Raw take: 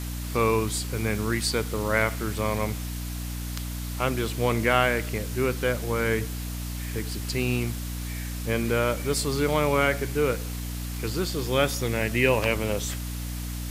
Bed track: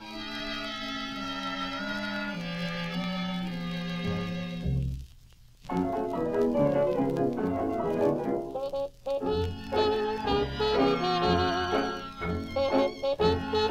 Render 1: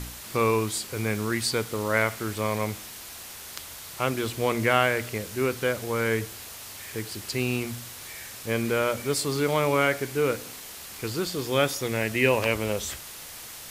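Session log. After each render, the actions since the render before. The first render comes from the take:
hum removal 60 Hz, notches 5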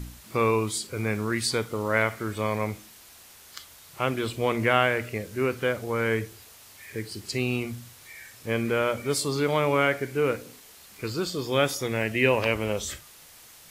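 noise reduction from a noise print 9 dB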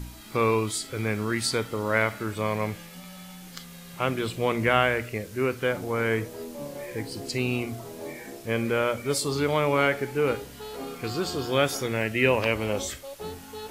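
mix in bed track −12.5 dB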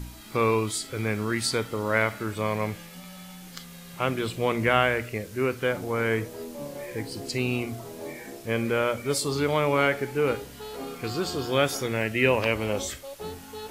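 no processing that can be heard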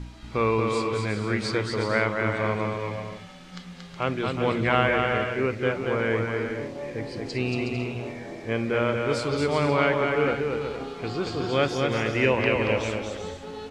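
high-frequency loss of the air 120 metres
bouncing-ball delay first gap 230 ms, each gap 0.6×, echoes 5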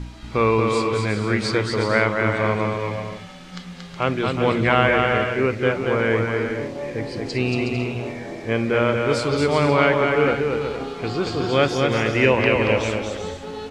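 level +5 dB
brickwall limiter −2 dBFS, peak gain reduction 2 dB

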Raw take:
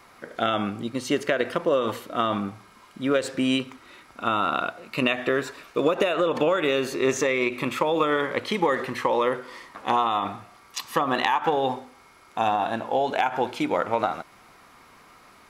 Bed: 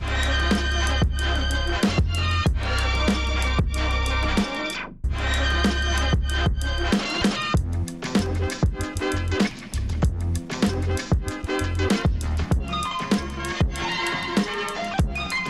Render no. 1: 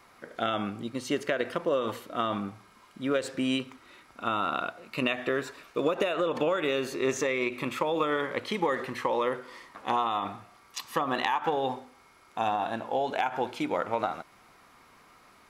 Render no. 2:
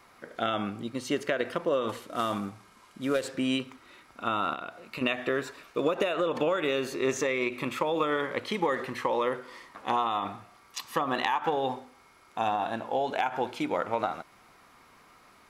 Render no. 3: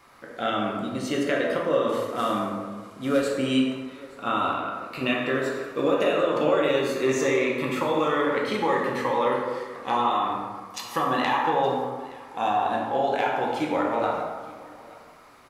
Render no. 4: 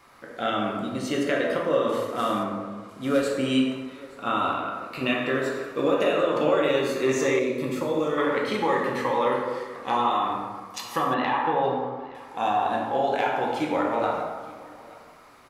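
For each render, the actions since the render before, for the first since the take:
level −5 dB
0:01.89–0:03.26: variable-slope delta modulation 64 kbit/s; 0:04.53–0:05.01: downward compressor, threshold −33 dBFS
single-tap delay 870 ms −22 dB; dense smooth reverb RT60 1.5 s, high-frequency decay 0.5×, DRR −2.5 dB
0:02.43–0:02.89: high-shelf EQ 7,400 Hz −10 dB; 0:07.39–0:08.18: flat-topped bell 1,600 Hz −8 dB 2.5 octaves; 0:11.14–0:12.15: high-frequency loss of the air 220 metres

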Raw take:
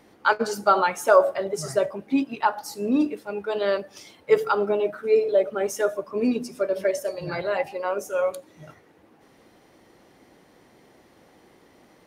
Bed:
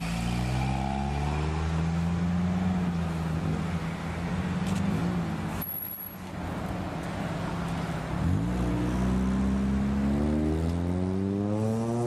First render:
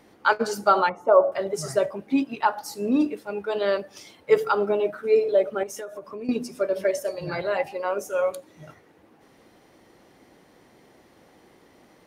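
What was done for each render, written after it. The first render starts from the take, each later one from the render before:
0:00.89–0:01.32: Savitzky-Golay smoothing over 65 samples
0:05.63–0:06.29: downward compressor 8 to 1, threshold −32 dBFS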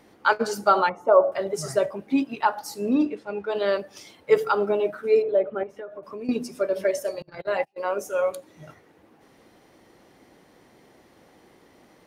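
0:02.94–0:03.55: high-frequency loss of the air 77 metres
0:05.22–0:06.03: high-frequency loss of the air 460 metres
0:07.22–0:07.78: noise gate −28 dBFS, range −34 dB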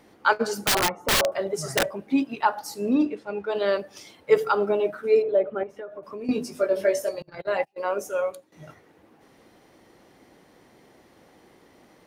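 0:00.54–0:01.97: wrap-around overflow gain 15.5 dB
0:06.22–0:07.09: double-tracking delay 19 ms −4 dB
0:08.10–0:08.52: fade out, to −15.5 dB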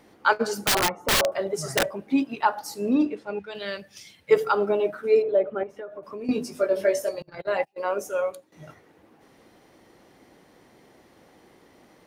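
0:03.39–0:04.31: flat-topped bell 580 Hz −11.5 dB 2.7 octaves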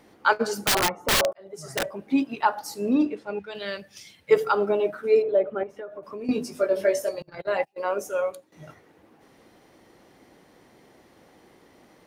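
0:01.33–0:02.12: fade in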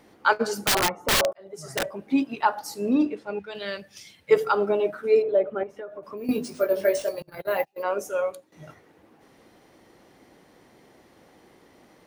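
0:06.17–0:07.83: bad sample-rate conversion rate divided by 3×, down none, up hold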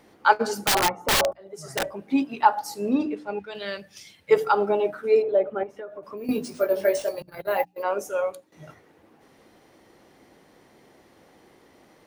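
mains-hum notches 60/120/180/240/300 Hz
dynamic equaliser 830 Hz, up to +7 dB, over −45 dBFS, Q 6.8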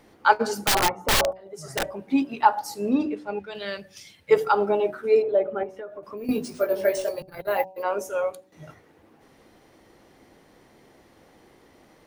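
low-shelf EQ 65 Hz +9.5 dB
hum removal 188.5 Hz, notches 5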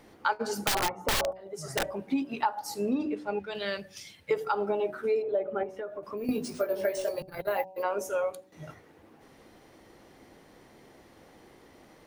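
downward compressor 4 to 1, threshold −26 dBFS, peak gain reduction 13 dB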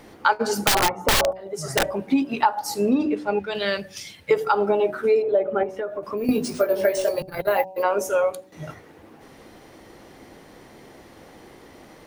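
level +8.5 dB

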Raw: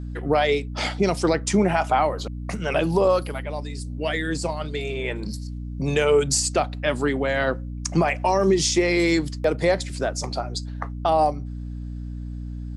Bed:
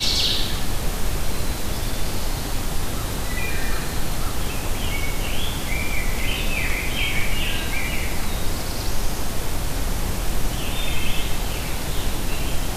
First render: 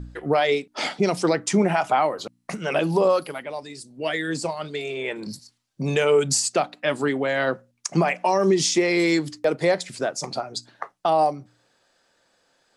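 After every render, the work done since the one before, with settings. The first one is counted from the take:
hum removal 60 Hz, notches 5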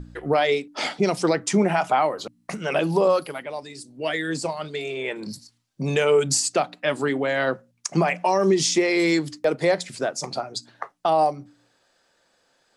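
hum removal 58.37 Hz, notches 5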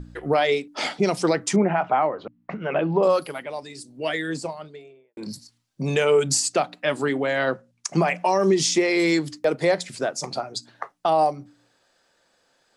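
0:01.56–0:03.03: Bessel low-pass filter 1,900 Hz, order 4
0:04.08–0:05.17: fade out and dull
0:07.38–0:07.88: low-pass filter 10,000 Hz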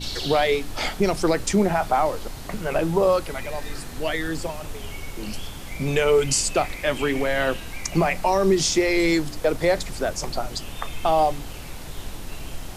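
mix in bed −10.5 dB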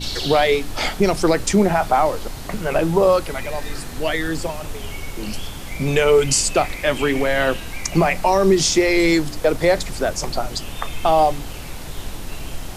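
level +4 dB

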